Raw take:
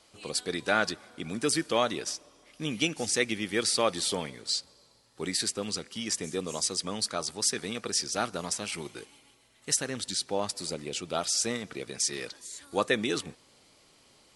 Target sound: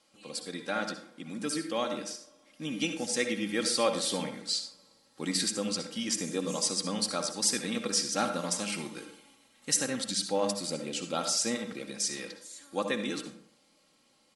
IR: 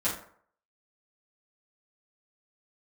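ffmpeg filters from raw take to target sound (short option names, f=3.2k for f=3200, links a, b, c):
-filter_complex "[0:a]lowshelf=f=110:t=q:w=3:g=-7,aecho=1:1:3.7:0.55,asplit=2[a][b];[1:a]atrim=start_sample=2205,adelay=58[c];[b][c]afir=irnorm=-1:irlink=0,volume=-15dB[d];[a][d]amix=inputs=2:normalize=0,dynaudnorm=f=590:g=11:m=8dB,volume=-8.5dB"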